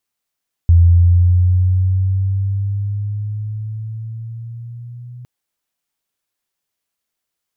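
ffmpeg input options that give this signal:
-f lavfi -i "aevalsrc='pow(10,(-5-26*t/4.56)/20)*sin(2*PI*84.7*4.56/(6.5*log(2)/12)*(exp(6.5*log(2)/12*t/4.56)-1))':d=4.56:s=44100"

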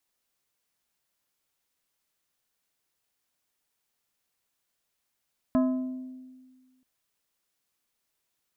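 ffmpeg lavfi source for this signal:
-f lavfi -i "aevalsrc='0.112*pow(10,-3*t/1.64)*sin(2*PI*257*t)+0.0501*pow(10,-3*t/0.864)*sin(2*PI*642.5*t)+0.0224*pow(10,-3*t/0.621)*sin(2*PI*1028*t)+0.01*pow(10,-3*t/0.532)*sin(2*PI*1285*t)+0.00447*pow(10,-3*t/0.442)*sin(2*PI*1670.5*t)':d=1.28:s=44100"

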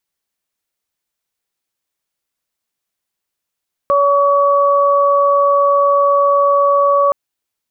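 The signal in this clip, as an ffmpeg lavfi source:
-f lavfi -i "aevalsrc='0.251*sin(2*PI*566*t)+0.251*sin(2*PI*1132*t)':d=3.22:s=44100"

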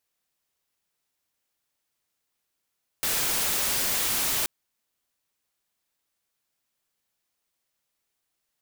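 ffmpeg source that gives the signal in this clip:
-f lavfi -i "anoisesrc=c=white:a=0.0868:d=1.43:r=44100:seed=1"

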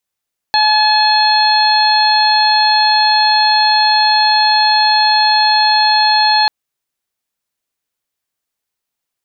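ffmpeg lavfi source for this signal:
-f lavfi -i "aevalsrc='0.266*sin(2*PI*855*t)+0.133*sin(2*PI*1710*t)+0.0668*sin(2*PI*2565*t)+0.0631*sin(2*PI*3420*t)+0.237*sin(2*PI*4275*t)':d=5.94:s=44100"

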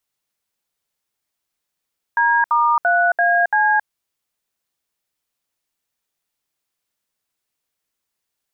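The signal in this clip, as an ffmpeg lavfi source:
-f lavfi -i "aevalsrc='0.168*clip(min(mod(t,0.339),0.271-mod(t,0.339))/0.002,0,1)*(eq(floor(t/0.339),0)*(sin(2*PI*941*mod(t,0.339))+sin(2*PI*1633*mod(t,0.339)))+eq(floor(t/0.339),1)*(sin(2*PI*941*mod(t,0.339))+sin(2*PI*1209*mod(t,0.339)))+eq(floor(t/0.339),2)*(sin(2*PI*697*mod(t,0.339))+sin(2*PI*1477*mod(t,0.339)))+eq(floor(t/0.339),3)*(sin(2*PI*697*mod(t,0.339))+sin(2*PI*1633*mod(t,0.339)))+eq(floor(t/0.339),4)*(sin(2*PI*852*mod(t,0.339))+sin(2*PI*1633*mod(t,0.339))))':d=1.695:s=44100"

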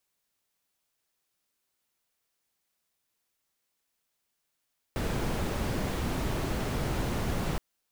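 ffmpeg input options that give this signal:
-f lavfi -i "anoisesrc=c=brown:a=0.148:d=2.62:r=44100:seed=1"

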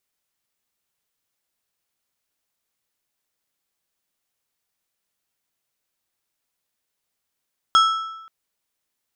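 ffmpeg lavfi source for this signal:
-f lavfi -i "aevalsrc='0.316*pow(10,-3*t/0.97)*sin(2*PI*1320*t)+0.141*pow(10,-3*t/0.737)*sin(2*PI*3300*t)+0.0631*pow(10,-3*t/0.64)*sin(2*PI*5280*t)+0.0282*pow(10,-3*t/0.599)*sin(2*PI*6600*t)+0.0126*pow(10,-3*t/0.553)*sin(2*PI*8580*t)':d=0.53:s=44100"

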